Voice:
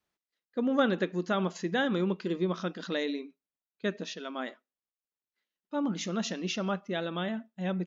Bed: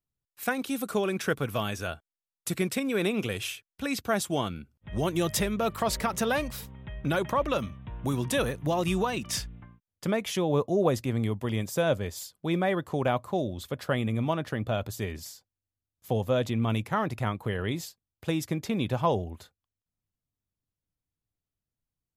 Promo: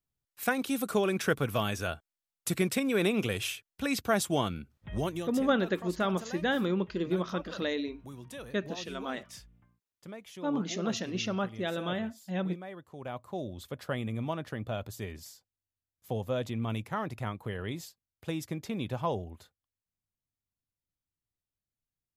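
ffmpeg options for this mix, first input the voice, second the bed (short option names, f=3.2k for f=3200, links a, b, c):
-filter_complex "[0:a]adelay=4700,volume=-0.5dB[a];[1:a]volume=11dB,afade=t=out:st=4.84:d=0.47:silence=0.141254,afade=t=in:st=12.96:d=0.59:silence=0.281838[b];[a][b]amix=inputs=2:normalize=0"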